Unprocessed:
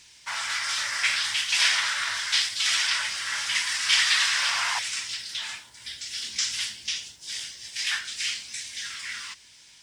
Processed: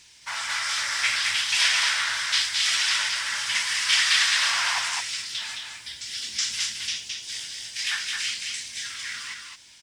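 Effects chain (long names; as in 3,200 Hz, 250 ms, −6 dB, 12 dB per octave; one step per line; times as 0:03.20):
single-tap delay 216 ms −4 dB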